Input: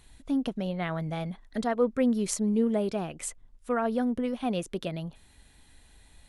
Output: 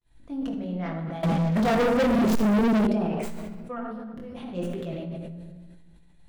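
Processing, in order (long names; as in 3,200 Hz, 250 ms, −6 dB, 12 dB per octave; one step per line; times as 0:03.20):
stylus tracing distortion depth 0.28 ms
0:03.78–0:04.53: compressor whose output falls as the input rises −34 dBFS, ratio −0.5
chorus effect 0.86 Hz, delay 17 ms, depth 6.8 ms
downward expander −52 dBFS
high-shelf EQ 2,800 Hz −9.5 dB
convolution reverb RT60 1.4 s, pre-delay 6 ms, DRR 1 dB
0:01.23–0:02.87: leveller curve on the samples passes 5
level that may fall only so fast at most 23 dB per second
level −3 dB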